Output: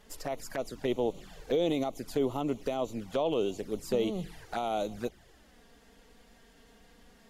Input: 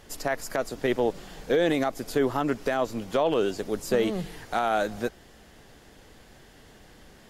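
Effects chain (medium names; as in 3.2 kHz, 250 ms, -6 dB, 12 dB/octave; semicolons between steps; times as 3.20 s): touch-sensitive flanger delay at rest 5.2 ms, full sweep at -24.5 dBFS; trim -4 dB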